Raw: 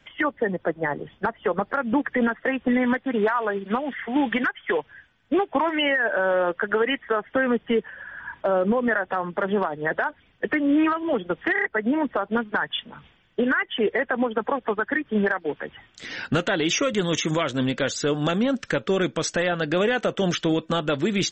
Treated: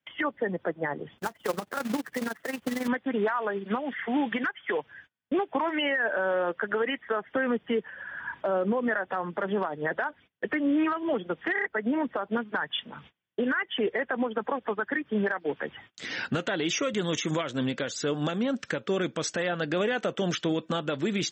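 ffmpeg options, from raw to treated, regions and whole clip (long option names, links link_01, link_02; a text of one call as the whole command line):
ffmpeg -i in.wav -filter_complex "[0:a]asettb=1/sr,asplit=3[link_01][link_02][link_03];[link_01]atrim=end=1.184[link_04];[link_02]atrim=start=1.18:end=2.88,asetpts=PTS-STARTPTS,afade=type=in:duration=0.004:curve=qsin,afade=type=out:start_time=1.696:duration=0.004:curve=qsin,tremolo=f=22:d=0.71,acrusher=bits=2:mode=log:mix=0:aa=0.000001[link_05];[link_03]atrim=start=2.876[link_06];[link_04][link_05]acrossfade=duration=0.004:curve1=hsin:curve2=qsin[link_07];[link_07][link_06]acrossfade=duration=0.004:curve1=qsin:curve2=hsin,alimiter=limit=-19dB:level=0:latency=1:release=354,highpass=100,agate=range=-26dB:threshold=-51dB:ratio=16:detection=peak" out.wav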